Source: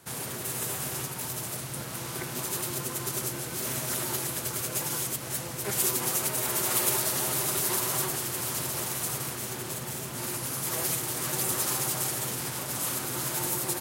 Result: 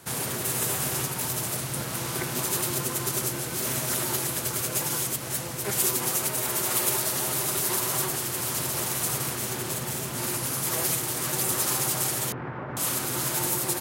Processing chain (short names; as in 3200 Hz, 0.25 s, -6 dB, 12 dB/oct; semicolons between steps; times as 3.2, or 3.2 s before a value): 12.32–12.77 LPF 1800 Hz 24 dB/oct; in parallel at +3 dB: vocal rider 2 s; on the sum: gain -5 dB